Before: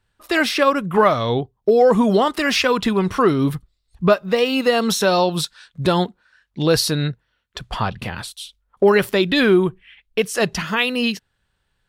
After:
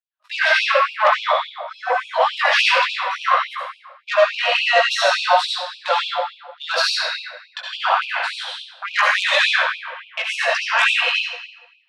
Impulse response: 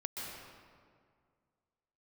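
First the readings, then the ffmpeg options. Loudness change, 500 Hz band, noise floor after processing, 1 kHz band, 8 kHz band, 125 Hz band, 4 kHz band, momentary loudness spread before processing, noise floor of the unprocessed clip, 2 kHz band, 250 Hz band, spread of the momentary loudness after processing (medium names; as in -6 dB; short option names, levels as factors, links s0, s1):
+0.5 dB, -5.5 dB, -53 dBFS, +3.5 dB, -5.0 dB, under -40 dB, +4.0 dB, 13 LU, -72 dBFS, +6.5 dB, under -40 dB, 15 LU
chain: -filter_complex "[0:a]highpass=f=240:p=1,agate=range=0.0501:threshold=0.00562:ratio=16:detection=peak,lowpass=3200,dynaudnorm=f=810:g=7:m=3.55,flanger=delay=15:depth=3.5:speed=1.5,asplit=2[s0][s1];[s1]aeval=exprs='0.708*sin(PI/2*3.55*val(0)/0.708)':c=same,volume=0.251[s2];[s0][s2]amix=inputs=2:normalize=0[s3];[1:a]atrim=start_sample=2205,asetrate=83790,aresample=44100[s4];[s3][s4]afir=irnorm=-1:irlink=0,afftfilt=real='re*gte(b*sr/1024,490*pow(2400/490,0.5+0.5*sin(2*PI*3.5*pts/sr)))':imag='im*gte(b*sr/1024,490*pow(2400/490,0.5+0.5*sin(2*PI*3.5*pts/sr)))':win_size=1024:overlap=0.75,volume=2.37"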